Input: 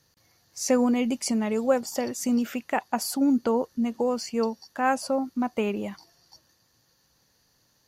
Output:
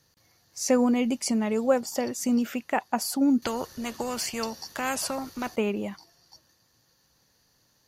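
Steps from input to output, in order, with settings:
0:03.42–0:05.56: every bin compressed towards the loudest bin 2 to 1

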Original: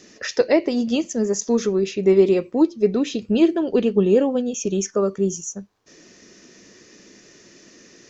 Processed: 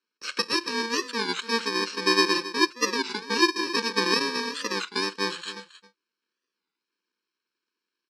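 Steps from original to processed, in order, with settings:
samples in bit-reversed order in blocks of 64 samples
loudspeaker in its box 430–5,800 Hz, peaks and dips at 690 Hz −10 dB, 1,600 Hz +4 dB, 2,900 Hz −4 dB, 4,300 Hz +6 dB
noise gate −47 dBFS, range −32 dB
on a send: single-tap delay 271 ms −15 dB
on the sum: wow of a warped record 33 1/3 rpm, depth 160 cents

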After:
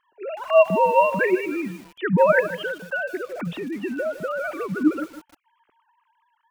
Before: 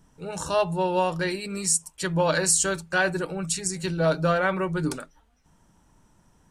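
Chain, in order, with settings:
three sine waves on the formant tracks
0:02.40–0:04.81: downward compressor 6 to 1, threshold −31 dBFS, peak gain reduction 15 dB
feedback echo at a low word length 155 ms, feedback 35%, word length 7 bits, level −12 dB
level +5.5 dB

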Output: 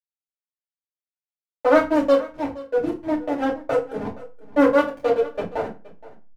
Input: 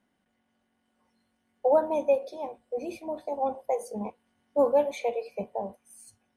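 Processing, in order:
phase distortion by the signal itself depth 0.23 ms
dynamic equaliser 820 Hz, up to −8 dB, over −44 dBFS, Q 4.5
transient designer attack 0 dB, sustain −8 dB
in parallel at −2.5 dB: downward compressor, threshold −32 dBFS, peak gain reduction 13 dB
on the sum: slack as between gear wheels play −28 dBFS
on a send: single-tap delay 471 ms −19 dB
on the sum: feedback delay network reverb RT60 0.31 s, low-frequency decay 1.2×, high-frequency decay 0.8×, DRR −5 dB
level +1 dB

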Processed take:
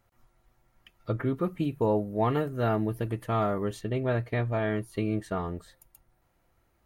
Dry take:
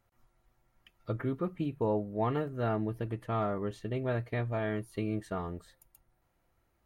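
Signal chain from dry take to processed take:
0:01.37–0:03.81: high-shelf EQ 6,800 Hz +11 dB
level +4.5 dB

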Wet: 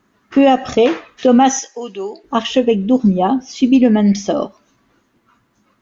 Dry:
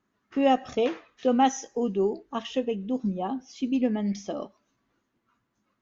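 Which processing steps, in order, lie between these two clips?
0:01.59–0:02.24: resonant band-pass 3,800 Hz, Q 0.59
boost into a limiter +17.5 dB
level −2 dB

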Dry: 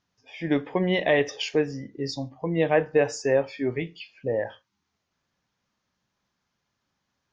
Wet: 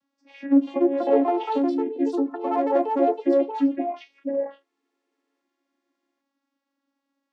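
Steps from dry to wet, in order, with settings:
treble cut that deepens with the level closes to 780 Hz, closed at −22 dBFS
asymmetric clip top −19 dBFS
channel vocoder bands 16, saw 277 Hz
delay with pitch and tempo change per echo 400 ms, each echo +4 semitones, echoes 2
level +3.5 dB

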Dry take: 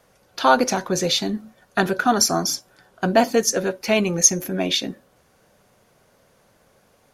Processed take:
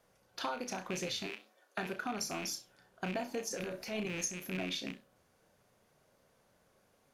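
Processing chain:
loose part that buzzes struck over −29 dBFS, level −14 dBFS
0:01.26–0:01.78: Chebyshev high-pass filter 300 Hz, order 5
downward compressor 6 to 1, threshold −23 dBFS, peak gain reduction 13.5 dB
0:03.48–0:04.06: transient designer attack −8 dB, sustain +10 dB
flanger 2 Hz, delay 4.2 ms, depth 8.7 ms, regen +89%
flutter between parallel walls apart 5.6 metres, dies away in 0.22 s
level −7.5 dB

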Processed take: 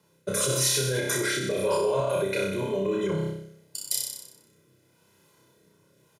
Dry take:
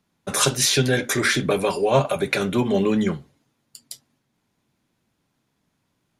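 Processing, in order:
tilt shelving filter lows +4.5 dB, about 1,400 Hz
reversed playback
downward compressor 10 to 1, threshold −28 dBFS, peak gain reduction 18.5 dB
reversed playback
high-pass filter 160 Hz 12 dB per octave
on a send: flutter between parallel walls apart 5.3 metres, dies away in 0.8 s
on the sum: rotating-speaker cabinet horn 0.9 Hz
brickwall limiter −26.5 dBFS, peak gain reduction 9 dB
high-shelf EQ 6,100 Hz +11.5 dB
comb filter 2 ms, depth 73%
level +6.5 dB

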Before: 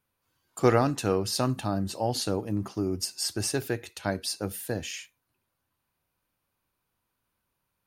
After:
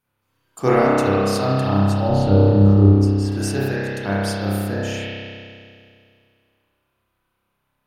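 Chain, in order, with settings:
0:02.10–0:03.32: RIAA equalisation playback
spring reverb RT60 2.3 s, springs 30 ms, chirp 50 ms, DRR −9 dB

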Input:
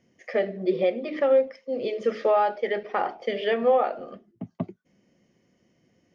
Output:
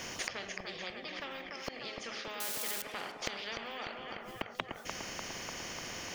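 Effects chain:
0:02.40–0:02.82: spike at every zero crossing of −30 dBFS
parametric band 180 Hz −10 dB 2.8 octaves
gate with flip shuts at −35 dBFS, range −28 dB
on a send: feedback echo with a low-pass in the loop 297 ms, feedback 58%, low-pass 4,000 Hz, level −12.5 dB
on the sum: every bin compressed towards the loudest bin 4 to 1
level +15 dB

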